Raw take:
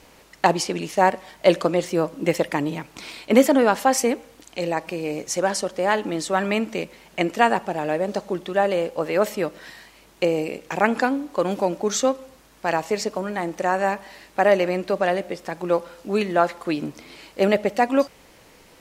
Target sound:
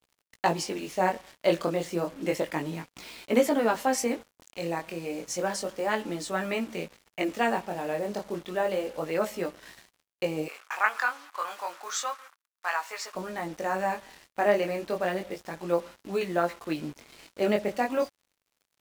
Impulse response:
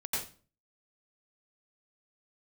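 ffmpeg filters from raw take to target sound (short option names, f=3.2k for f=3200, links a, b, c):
-filter_complex "[0:a]flanger=delay=16.5:depth=7.7:speed=0.31,acrusher=bits=6:mix=0:aa=0.5,asettb=1/sr,asplit=3[a][b][c];[a]atrim=end=10.484[d];[b]atrim=start=10.48:end=13.15,asetpts=PTS-STARTPTS,afade=t=in:d=0.004:c=qsin,afade=t=out:st=2.666:d=0.004:c=qsin,highpass=f=1.2k:t=q:w=2.6[e];[c]atrim=start=13.146[f];[d][e]acrossfade=d=0.004:c1=hsin:c2=qsin[g];[g][f]acrossfade=d=0.004:c1=qsin:c2=hsin,volume=-4dB"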